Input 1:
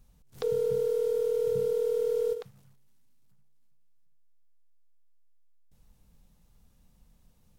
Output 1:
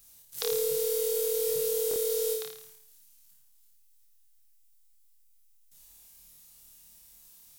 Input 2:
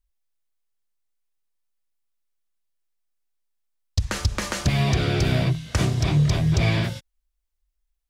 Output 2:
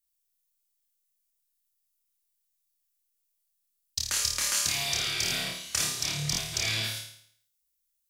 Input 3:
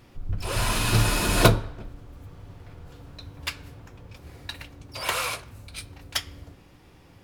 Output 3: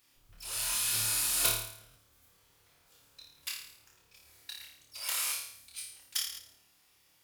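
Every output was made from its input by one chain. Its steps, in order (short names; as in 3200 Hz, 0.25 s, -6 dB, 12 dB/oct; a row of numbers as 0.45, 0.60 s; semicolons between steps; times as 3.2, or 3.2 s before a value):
pre-emphasis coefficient 0.97; flutter echo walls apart 4.7 m, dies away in 0.63 s; stuck buffer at 1.89/5.25/6.31, samples 1024, times 2; normalise peaks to -12 dBFS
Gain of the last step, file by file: +15.5, +5.0, -3.0 dB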